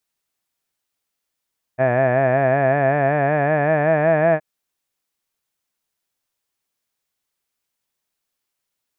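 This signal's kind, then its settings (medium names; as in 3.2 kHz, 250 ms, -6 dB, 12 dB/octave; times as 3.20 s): formant-synthesis vowel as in had, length 2.62 s, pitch 125 Hz, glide +4.5 st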